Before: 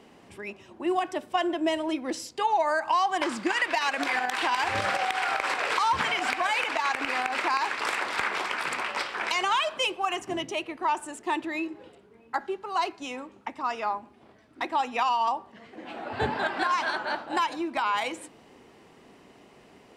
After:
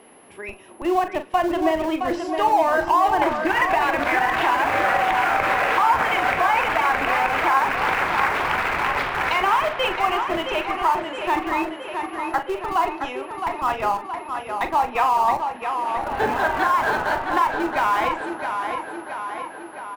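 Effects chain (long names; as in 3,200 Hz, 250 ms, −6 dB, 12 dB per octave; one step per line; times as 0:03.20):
steady tone 11,000 Hz −47 dBFS
bass and treble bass −11 dB, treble −14 dB
treble cut that deepens with the level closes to 1,800 Hz, closed at −22 dBFS
in parallel at −11 dB: comparator with hysteresis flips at −30 dBFS
on the sum: double-tracking delay 41 ms −10 dB
on a send: tape delay 668 ms, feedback 66%, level −5.5 dB, low-pass 5,100 Hz
on the sum: level +5.5 dB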